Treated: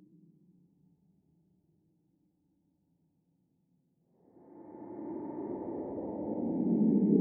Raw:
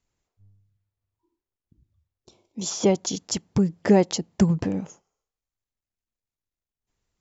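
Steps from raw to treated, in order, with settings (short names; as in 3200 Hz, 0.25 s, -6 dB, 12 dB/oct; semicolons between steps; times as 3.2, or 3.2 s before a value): vocal tract filter u; Paulstretch 45×, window 0.05 s, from 3.74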